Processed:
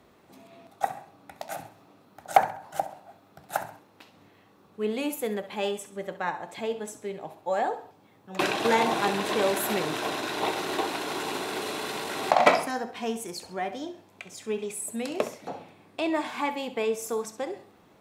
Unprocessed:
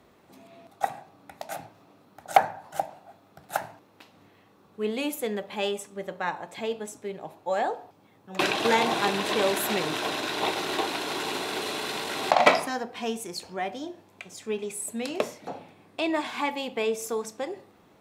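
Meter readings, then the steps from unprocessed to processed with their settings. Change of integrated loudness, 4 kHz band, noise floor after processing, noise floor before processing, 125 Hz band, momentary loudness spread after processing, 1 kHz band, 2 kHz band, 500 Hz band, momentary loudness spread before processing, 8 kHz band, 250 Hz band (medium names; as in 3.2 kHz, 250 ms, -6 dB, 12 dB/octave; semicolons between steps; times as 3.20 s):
-0.5 dB, -3.5 dB, -59 dBFS, -59 dBFS, 0.0 dB, 15 LU, 0.0 dB, -1.5 dB, 0.0 dB, 16 LU, -0.5 dB, 0.0 dB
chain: dynamic bell 3.6 kHz, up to -4 dB, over -42 dBFS, Q 0.83; thinning echo 66 ms, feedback 37%, level -13.5 dB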